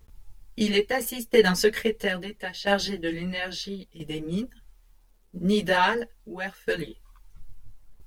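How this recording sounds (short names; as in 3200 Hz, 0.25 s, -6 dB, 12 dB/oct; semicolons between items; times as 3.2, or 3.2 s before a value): tremolo saw down 0.75 Hz, depth 80%; a quantiser's noise floor 12-bit, dither none; a shimmering, thickened sound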